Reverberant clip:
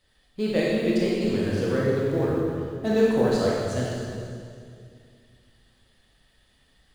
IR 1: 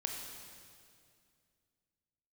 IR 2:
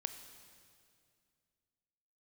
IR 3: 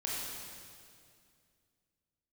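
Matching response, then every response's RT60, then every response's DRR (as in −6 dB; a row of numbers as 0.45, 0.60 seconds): 3; 2.3, 2.3, 2.3 seconds; 1.0, 8.5, −5.5 decibels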